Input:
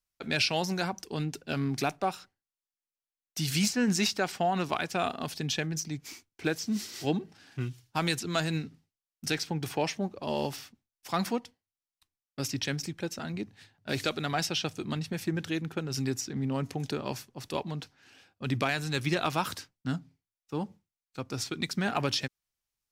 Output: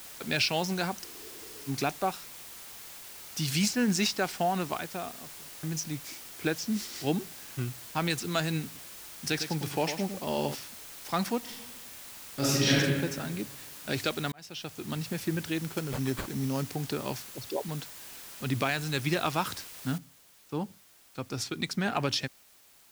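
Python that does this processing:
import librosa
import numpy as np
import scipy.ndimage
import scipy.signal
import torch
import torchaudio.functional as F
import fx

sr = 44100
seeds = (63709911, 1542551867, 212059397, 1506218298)

y = fx.spec_freeze(x, sr, seeds[0], at_s=1.06, hold_s=0.62)
y = fx.studio_fade_out(y, sr, start_s=4.33, length_s=1.3)
y = fx.air_absorb(y, sr, metres=110.0, at=(7.63, 8.09), fade=0.02)
y = fx.echo_feedback(y, sr, ms=103, feedback_pct=24, wet_db=-9.0, at=(8.65, 10.55))
y = fx.reverb_throw(y, sr, start_s=11.39, length_s=1.37, rt60_s=1.4, drr_db=-9.5)
y = fx.sample_hold(y, sr, seeds[1], rate_hz=5700.0, jitter_pct=0, at=(15.6, 16.7))
y = fx.envelope_sharpen(y, sr, power=3.0, at=(17.29, 17.69))
y = fx.noise_floor_step(y, sr, seeds[2], at_s=19.98, before_db=-46, after_db=-59, tilt_db=0.0)
y = fx.edit(y, sr, fx.fade_in_span(start_s=14.32, length_s=0.74), tone=tone)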